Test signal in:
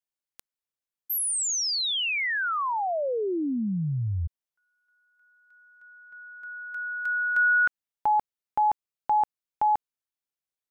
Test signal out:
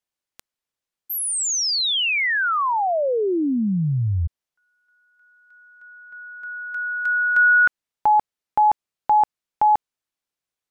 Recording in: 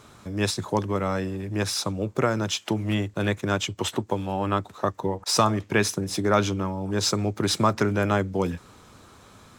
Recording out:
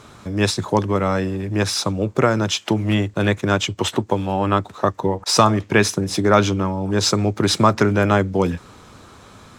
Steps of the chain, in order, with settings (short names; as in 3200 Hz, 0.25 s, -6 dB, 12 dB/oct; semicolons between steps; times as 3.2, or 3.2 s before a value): high shelf 11000 Hz -9 dB; gain +6.5 dB